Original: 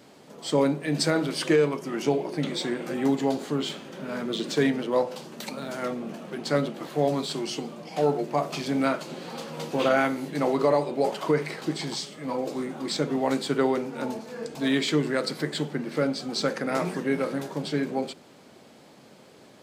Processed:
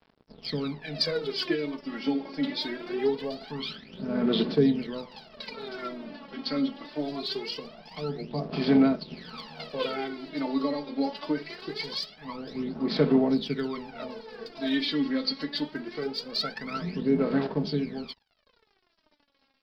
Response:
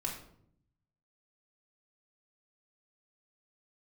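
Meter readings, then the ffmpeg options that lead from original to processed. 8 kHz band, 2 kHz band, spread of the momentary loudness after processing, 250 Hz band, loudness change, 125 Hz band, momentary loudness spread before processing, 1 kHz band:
below −15 dB, −5.5 dB, 15 LU, 0.0 dB, −2.0 dB, −3.5 dB, 11 LU, −7.5 dB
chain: -filter_complex "[0:a]aemphasis=mode=production:type=50kf,aecho=1:1:4.6:0.56,acrossover=split=430|3000[link_01][link_02][link_03];[link_02]acompressor=threshold=-33dB:ratio=3[link_04];[link_01][link_04][link_03]amix=inputs=3:normalize=0,aresample=11025,aeval=exprs='sgn(val(0))*max(abs(val(0))-0.00562,0)':channel_layout=same,aresample=44100,aphaser=in_gain=1:out_gain=1:delay=3.7:decay=0.76:speed=0.23:type=sinusoidal,volume=-6.5dB"

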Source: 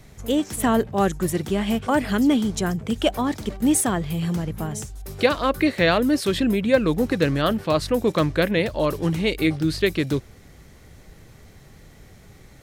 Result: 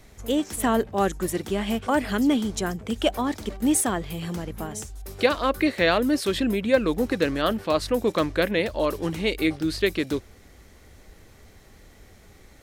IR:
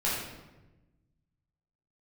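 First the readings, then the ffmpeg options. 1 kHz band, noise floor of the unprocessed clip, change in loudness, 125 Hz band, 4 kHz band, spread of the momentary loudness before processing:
−1.5 dB, −49 dBFS, −2.5 dB, −7.5 dB, −1.5 dB, 6 LU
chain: -af "equalizer=frequency=140:width=2.2:gain=-11,volume=-1.5dB"

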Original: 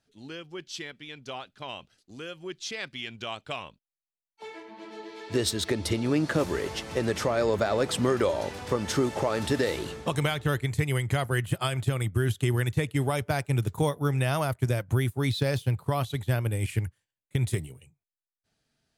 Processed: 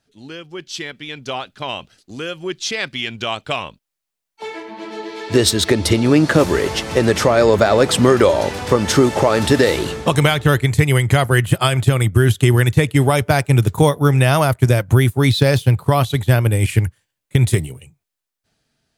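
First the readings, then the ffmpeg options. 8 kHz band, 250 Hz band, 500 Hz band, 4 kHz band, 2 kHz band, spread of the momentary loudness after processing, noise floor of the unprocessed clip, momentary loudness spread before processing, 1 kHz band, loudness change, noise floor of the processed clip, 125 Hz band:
+12.5 dB, +12.5 dB, +12.5 dB, +12.5 dB, +12.5 dB, 16 LU, below −85 dBFS, 14 LU, +12.5 dB, +12.5 dB, −81 dBFS, +12.5 dB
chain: -af "dynaudnorm=framelen=150:gausssize=11:maxgain=6dB,volume=6.5dB"

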